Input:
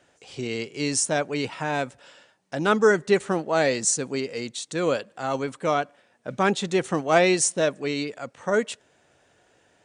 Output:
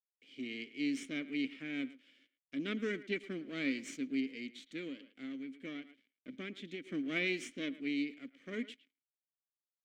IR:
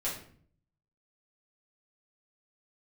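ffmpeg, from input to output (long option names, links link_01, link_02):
-filter_complex "[0:a]aeval=exprs='if(lt(val(0),0),0.251*val(0),val(0))':channel_layout=same,agate=range=-11dB:threshold=-57dB:ratio=16:detection=peak,acrusher=bits=8:mix=0:aa=0.5,asplit=3[link_01][link_02][link_03];[link_01]bandpass=frequency=270:width_type=q:width=8,volume=0dB[link_04];[link_02]bandpass=frequency=2290:width_type=q:width=8,volume=-6dB[link_05];[link_03]bandpass=frequency=3010:width_type=q:width=8,volume=-9dB[link_06];[link_04][link_05][link_06]amix=inputs=3:normalize=0,equalizer=frequency=82:width_type=o:width=0.9:gain=-13.5,asplit=2[link_07][link_08];[link_08]adelay=110,highpass=300,lowpass=3400,asoftclip=type=hard:threshold=-33.5dB,volume=-16dB[link_09];[link_07][link_09]amix=inputs=2:normalize=0,asettb=1/sr,asplit=3[link_10][link_11][link_12];[link_10]atrim=end=4.804[link_13];[link_11]atrim=start=4.8:end=6.87,asetpts=PTS-STARTPTS,afade=type=in:duration=0.004:curve=qsin,afade=type=out:start_time=2.066:duration=0.004:curve=qsin,acompressor=threshold=-43dB:ratio=10[link_14];[link_12]atrim=start=6.866[link_15];[link_13][link_14]acrossfade=duration=0.004:curve1=hsin:curve2=qsin[link_16];[link_16][link_15]acrossfade=duration=0.004:curve1=qsin:curve2=hsin,volume=2.5dB"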